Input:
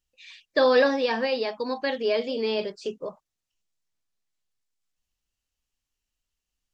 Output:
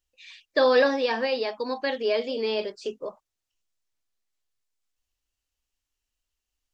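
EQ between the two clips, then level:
parametric band 170 Hz −11.5 dB 0.47 octaves
0.0 dB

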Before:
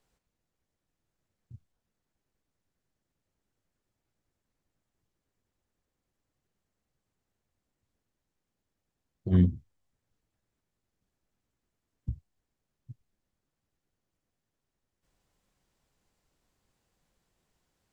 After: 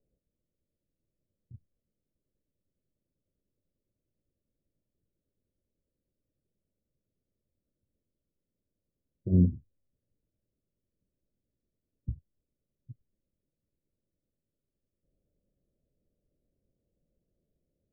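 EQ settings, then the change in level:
elliptic low-pass filter 600 Hz, stop band 40 dB
0.0 dB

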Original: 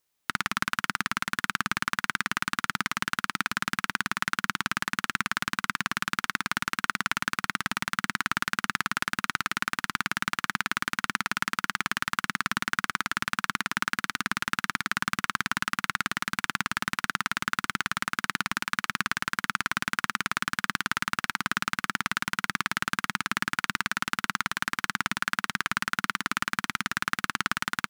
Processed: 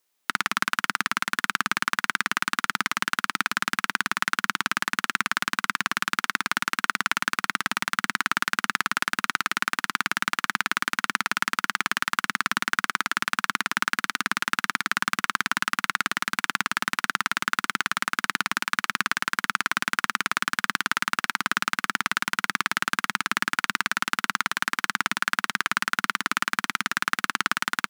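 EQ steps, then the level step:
high-pass filter 230 Hz 12 dB per octave
+3.5 dB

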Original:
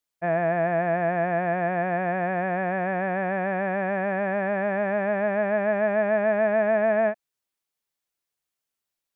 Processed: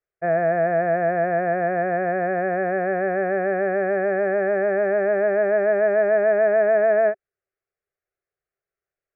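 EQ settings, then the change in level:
Bessel low-pass filter 1,600 Hz, order 2
parametric band 390 Hz +10 dB 0.22 octaves
phaser with its sweep stopped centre 950 Hz, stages 6
+5.5 dB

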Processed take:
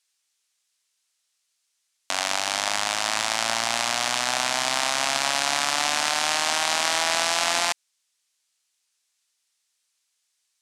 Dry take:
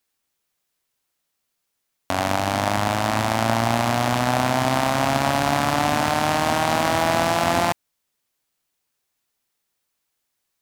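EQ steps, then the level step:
meter weighting curve ITU-R 468
−5.0 dB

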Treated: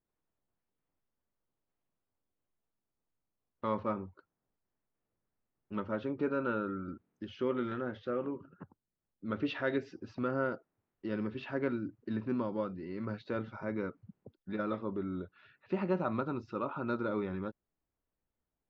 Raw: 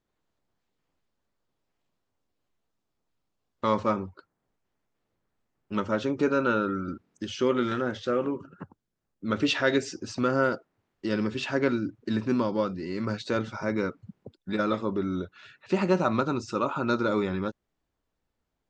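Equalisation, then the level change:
high-frequency loss of the air 270 metres
high-shelf EQ 5,900 Hz −7 dB
−7.5 dB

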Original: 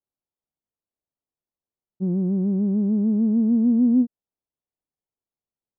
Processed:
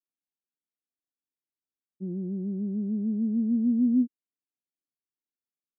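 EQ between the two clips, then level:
resonant band-pass 280 Hz, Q 2.3
high-frequency loss of the air 440 metres
−3.0 dB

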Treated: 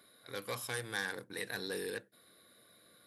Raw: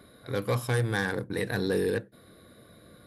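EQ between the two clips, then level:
low-pass filter 2,900 Hz 6 dB per octave
first difference
low-shelf EQ 490 Hz +8.5 dB
+6.5 dB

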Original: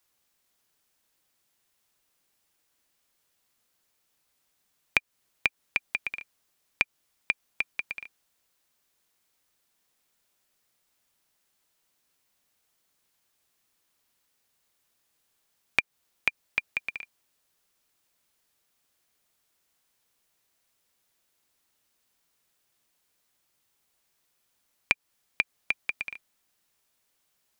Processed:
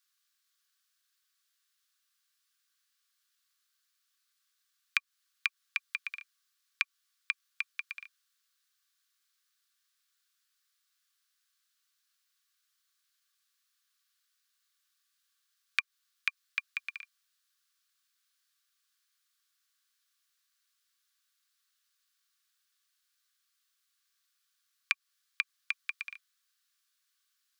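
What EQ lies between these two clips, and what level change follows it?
Chebyshev high-pass with heavy ripple 1,100 Hz, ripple 6 dB
0.0 dB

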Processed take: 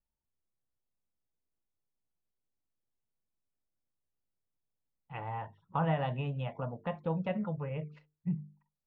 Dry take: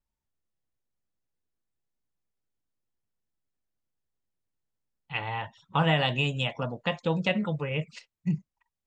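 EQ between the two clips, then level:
low-pass filter 1,100 Hz 12 dB per octave
mains-hum notches 50/100/150/200/250/300/350/400/450 Hz
dynamic equaliser 340 Hz, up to −6 dB, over −42 dBFS, Q 1.2
−3.0 dB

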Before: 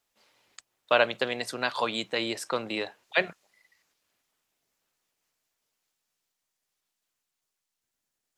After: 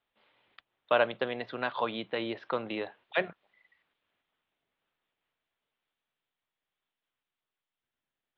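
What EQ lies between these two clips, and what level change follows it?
elliptic low-pass filter 3,500 Hz, stop band 60 dB
dynamic equaliser 2,700 Hz, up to −6 dB, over −39 dBFS, Q 0.81
−1.0 dB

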